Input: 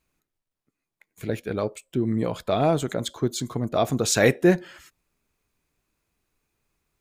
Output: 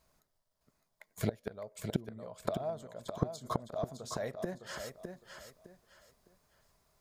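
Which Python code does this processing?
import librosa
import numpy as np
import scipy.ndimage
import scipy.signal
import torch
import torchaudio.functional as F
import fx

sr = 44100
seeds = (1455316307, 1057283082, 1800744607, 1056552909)

y = fx.graphic_eq_31(x, sr, hz=(315, 630, 1000, 2500, 5000), db=(-10, 11, 5, -9, 5))
y = fx.gate_flip(y, sr, shuts_db=-20.0, range_db=-26)
y = fx.echo_feedback(y, sr, ms=609, feedback_pct=27, wet_db=-7)
y = F.gain(torch.from_numpy(y), 3.0).numpy()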